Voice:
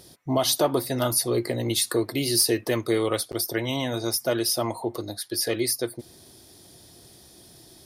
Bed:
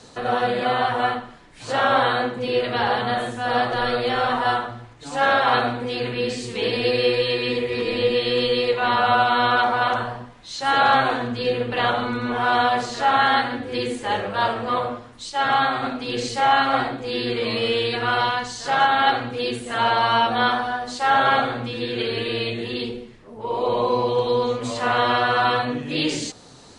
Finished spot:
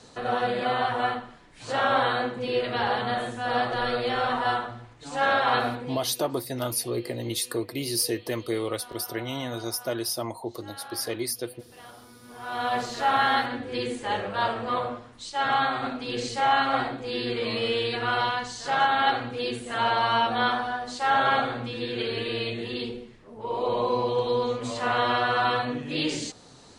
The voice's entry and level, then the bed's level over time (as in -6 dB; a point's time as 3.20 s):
5.60 s, -5.0 dB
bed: 5.74 s -4.5 dB
6.25 s -26.5 dB
12.20 s -26.5 dB
12.76 s -4.5 dB